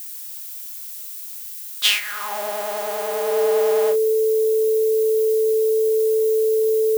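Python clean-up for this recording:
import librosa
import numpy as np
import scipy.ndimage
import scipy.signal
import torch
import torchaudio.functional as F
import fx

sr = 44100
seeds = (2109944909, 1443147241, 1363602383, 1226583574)

y = fx.notch(x, sr, hz=440.0, q=30.0)
y = fx.noise_reduce(y, sr, print_start_s=0.02, print_end_s=0.52, reduce_db=30.0)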